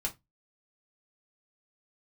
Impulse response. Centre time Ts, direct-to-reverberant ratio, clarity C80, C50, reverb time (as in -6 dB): 10 ms, -2.0 dB, 29.0 dB, 18.0 dB, 0.20 s